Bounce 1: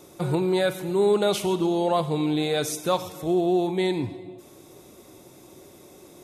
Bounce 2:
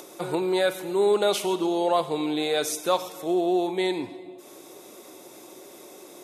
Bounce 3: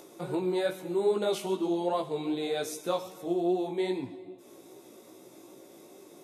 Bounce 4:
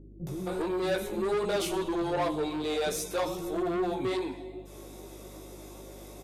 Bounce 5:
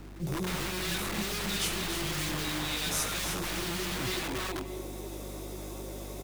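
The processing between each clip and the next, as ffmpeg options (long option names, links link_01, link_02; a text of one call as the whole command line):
ffmpeg -i in.wav -af "highpass=330,acompressor=mode=upward:threshold=-40dB:ratio=2.5,volume=1dB" out.wav
ffmpeg -i in.wav -af "lowshelf=frequency=380:gain=10,flanger=delay=15:depth=3.5:speed=2.5,volume=-6.5dB" out.wav
ffmpeg -i in.wav -filter_complex "[0:a]asoftclip=type=tanh:threshold=-30dB,acrossover=split=290[link_01][link_02];[link_02]adelay=270[link_03];[link_01][link_03]amix=inputs=2:normalize=0,aeval=exprs='val(0)+0.00178*(sin(2*PI*50*n/s)+sin(2*PI*2*50*n/s)/2+sin(2*PI*3*50*n/s)/3+sin(2*PI*4*50*n/s)/4+sin(2*PI*5*50*n/s)/5)':channel_layout=same,volume=6dB" out.wav
ffmpeg -i in.wav -filter_complex "[0:a]aecho=1:1:300|600|900:0.422|0.101|0.0243,acrusher=bits=8:mix=0:aa=0.000001,acrossover=split=250|1800[link_01][link_02][link_03];[link_02]aeval=exprs='(mod(56.2*val(0)+1,2)-1)/56.2':channel_layout=same[link_04];[link_01][link_04][link_03]amix=inputs=3:normalize=0,volume=3.5dB" out.wav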